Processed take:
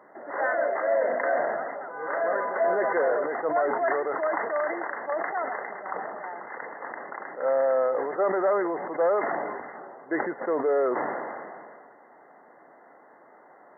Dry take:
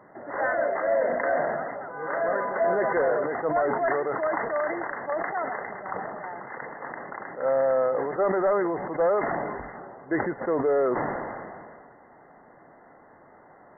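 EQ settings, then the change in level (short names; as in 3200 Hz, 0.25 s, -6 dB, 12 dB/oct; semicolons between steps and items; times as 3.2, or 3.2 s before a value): HPF 300 Hz 12 dB/oct; 0.0 dB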